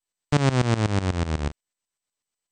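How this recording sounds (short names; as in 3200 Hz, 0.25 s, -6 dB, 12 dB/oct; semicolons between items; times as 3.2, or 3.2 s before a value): tremolo saw up 8.1 Hz, depth 90%; MP2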